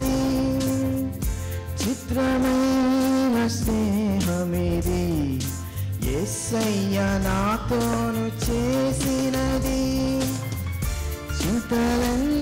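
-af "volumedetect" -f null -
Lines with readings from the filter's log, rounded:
mean_volume: -23.1 dB
max_volume: -14.0 dB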